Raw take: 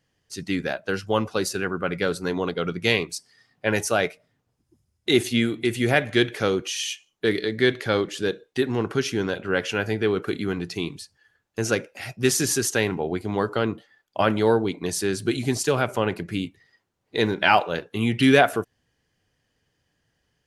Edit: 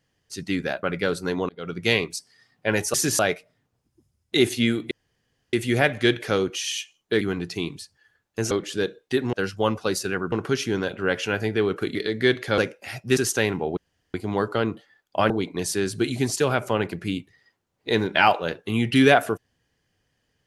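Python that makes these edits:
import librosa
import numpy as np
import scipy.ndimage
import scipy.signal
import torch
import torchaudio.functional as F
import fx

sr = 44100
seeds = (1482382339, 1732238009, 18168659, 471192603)

y = fx.edit(x, sr, fx.move(start_s=0.83, length_s=0.99, to_s=8.78),
    fx.fade_in_span(start_s=2.48, length_s=0.34),
    fx.insert_room_tone(at_s=5.65, length_s=0.62),
    fx.swap(start_s=7.33, length_s=0.63, other_s=10.41, other_length_s=1.3),
    fx.move(start_s=12.3, length_s=0.25, to_s=3.93),
    fx.insert_room_tone(at_s=13.15, length_s=0.37),
    fx.cut(start_s=14.31, length_s=0.26), tone=tone)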